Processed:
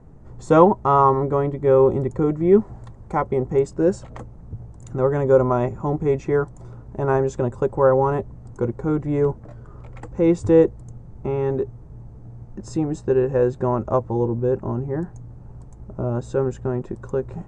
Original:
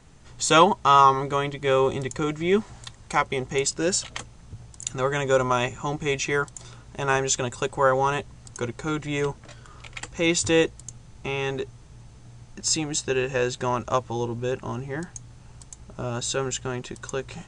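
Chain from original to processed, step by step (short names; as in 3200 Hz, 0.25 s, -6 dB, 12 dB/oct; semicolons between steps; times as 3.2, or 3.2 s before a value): EQ curve 470 Hz 0 dB, 1000 Hz -7 dB, 1900 Hz -17 dB, 3100 Hz -29 dB, 9800 Hz -25 dB; gain +7 dB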